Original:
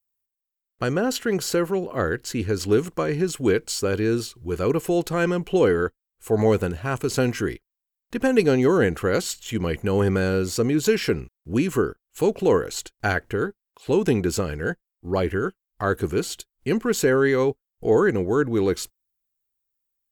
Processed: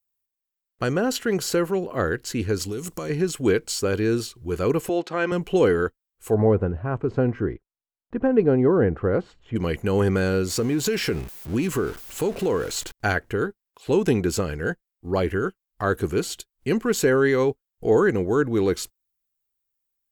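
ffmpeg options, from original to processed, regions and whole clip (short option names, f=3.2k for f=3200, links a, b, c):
-filter_complex "[0:a]asettb=1/sr,asplit=3[a][b][c];[a]atrim=end=2.624[d];[b]atrim=start=2.62:end=3.1,asetpts=PTS-STARTPTS,afade=t=in:d=0.004:c=qsin,afade=t=out:st=0.476:d=0.004:c=qsin,bass=f=250:g=3,treble=f=4k:g=12,bandreject=f=1.6k:w=13,acompressor=threshold=-27dB:ratio=6:attack=3.2:release=140:knee=1:detection=peak[e];[c]atrim=start=3.096[f];[d][e]acrossfade=d=0.004:c1=hsin:c2=qsin[g];[g][f]acrossfade=d=0.004:c1=qsin:c2=hsin,asettb=1/sr,asplit=3[h][i][j];[h]atrim=end=4.894[k];[i]atrim=start=4.89:end=5.32,asetpts=PTS-STARTPTS,afade=t=in:d=0.004:c=qsin,afade=t=out:st=0.426:d=0.004:c=qsin,highpass=300,lowpass=3.9k,bandreject=f=440:w=5.3[l];[j]atrim=start=5.316[m];[k][l]acrossfade=d=0.004:c1=hsin:c2=qsin[n];[n][m]acrossfade=d=0.004:c1=qsin:c2=hsin,asettb=1/sr,asplit=3[o][p][q];[o]atrim=end=6.344[r];[p]atrim=start=6.34:end=9.56,asetpts=PTS-STARTPTS,afade=t=in:d=0.004:c=qsin,afade=t=out:st=3.216:d=0.004:c=qsin,lowpass=1.1k,equalizer=f=92:t=o:w=0.78:g=3.5[s];[q]atrim=start=9.556[t];[r][s]acrossfade=d=0.004:c1=hsin:c2=qsin[u];[u][t]acrossfade=d=0.004:c1=qsin:c2=hsin,asettb=1/sr,asplit=3[v][w][x];[v]atrim=end=10.504[y];[w]atrim=start=10.5:end=12.92,asetpts=PTS-STARTPTS,afade=t=in:d=0.004:c=qsin,afade=t=out:st=2.416:d=0.004:c=qsin,aeval=exprs='val(0)+0.5*0.02*sgn(val(0))':c=same,acompressor=threshold=-19dB:ratio=4:attack=3.2:release=140:knee=1:detection=peak[z];[x]atrim=start=12.916[aa];[y][z]acrossfade=d=0.004:c1=hsin:c2=qsin[ab];[ab][aa]acrossfade=d=0.004:c1=qsin:c2=hsin"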